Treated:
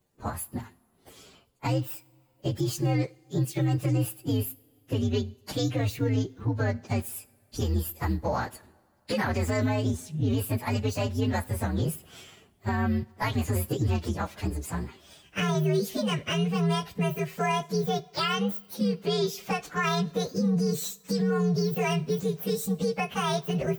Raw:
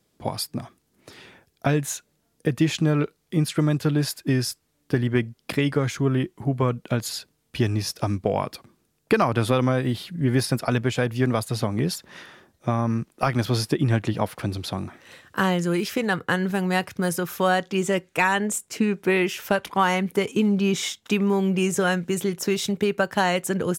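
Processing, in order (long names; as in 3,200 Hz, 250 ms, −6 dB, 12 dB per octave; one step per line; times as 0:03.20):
partials spread apart or drawn together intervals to 128%
brickwall limiter −18 dBFS, peak gain reduction 8 dB
coupled-rooms reverb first 0.54 s, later 3.1 s, from −18 dB, DRR 18 dB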